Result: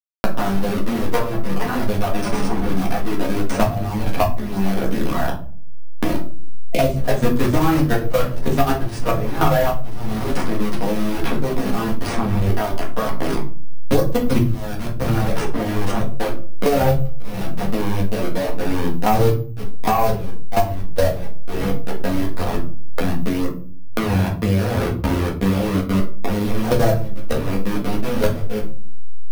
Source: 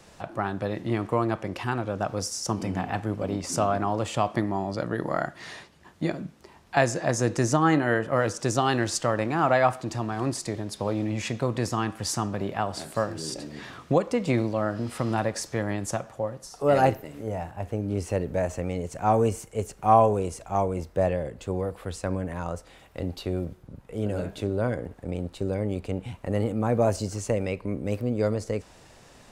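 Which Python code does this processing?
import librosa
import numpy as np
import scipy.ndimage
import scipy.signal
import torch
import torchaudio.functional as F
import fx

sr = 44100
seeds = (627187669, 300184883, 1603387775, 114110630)

y = fx.delta_hold(x, sr, step_db=-23.0)
y = fx.spec_box(y, sr, start_s=6.73, length_s=0.23, low_hz=670.0, high_hz=2000.0, gain_db=-27)
y = fx.highpass(y, sr, hz=300.0, slope=6, at=(23.95, 26.0))
y = fx.level_steps(y, sr, step_db=23)
y = fx.fold_sine(y, sr, drive_db=5, ceiling_db=-9.5)
y = fx.chorus_voices(y, sr, voices=2, hz=0.53, base_ms=12, depth_ms=3.5, mix_pct=60)
y = fx.room_shoebox(y, sr, seeds[0], volume_m3=190.0, walls='furnished', distance_m=1.8)
y = np.repeat(scipy.signal.resample_poly(y, 1, 3), 3)[:len(y)]
y = fx.band_squash(y, sr, depth_pct=100)
y = y * 10.0 ** (4.0 / 20.0)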